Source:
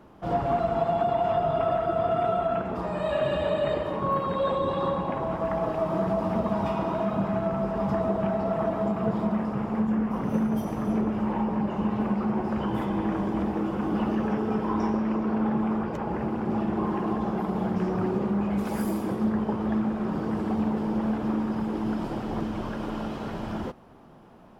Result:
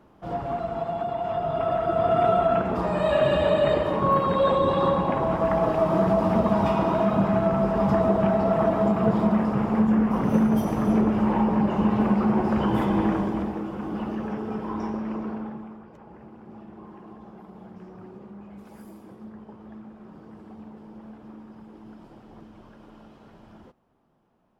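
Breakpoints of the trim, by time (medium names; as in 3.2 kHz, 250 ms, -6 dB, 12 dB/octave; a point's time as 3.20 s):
1.20 s -4 dB
2.25 s +5 dB
13.04 s +5 dB
13.65 s -4 dB
15.25 s -4 dB
15.79 s -17 dB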